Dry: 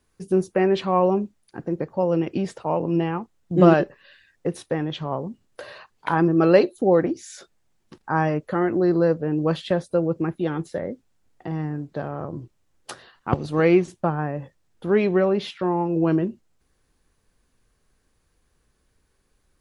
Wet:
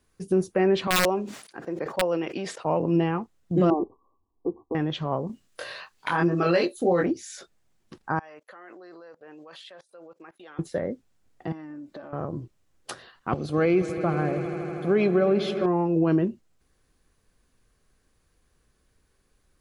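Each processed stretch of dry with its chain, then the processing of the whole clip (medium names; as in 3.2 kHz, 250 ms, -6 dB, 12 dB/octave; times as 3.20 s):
0.87–2.65 s: frequency weighting A + integer overflow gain 14 dB + decay stretcher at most 86 dB/s
3.70–4.75 s: brick-wall FIR low-pass 1.2 kHz + static phaser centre 570 Hz, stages 6
5.27–7.06 s: tilt shelf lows -5 dB, about 1.2 kHz + doubling 23 ms -2 dB
8.19–10.59 s: high-pass 790 Hz + level held to a coarse grid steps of 23 dB
11.52–12.13 s: bass shelf 130 Hz -11.5 dB + comb 3.4 ms, depth 67% + compression 12:1, threshold -36 dBFS
13.33–15.66 s: comb of notches 940 Hz + echo with a slow build-up 80 ms, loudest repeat 5, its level -18 dB
whole clip: band-stop 880 Hz, Q 20; peak limiter -13 dBFS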